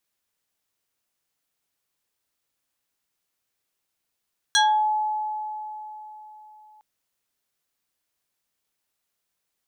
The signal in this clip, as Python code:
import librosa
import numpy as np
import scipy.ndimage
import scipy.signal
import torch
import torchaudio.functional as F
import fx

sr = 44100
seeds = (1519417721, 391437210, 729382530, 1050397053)

y = fx.fm2(sr, length_s=2.26, level_db=-14.5, carrier_hz=855.0, ratio=2.91, index=2.7, index_s=0.36, decay_s=3.8, shape='exponential')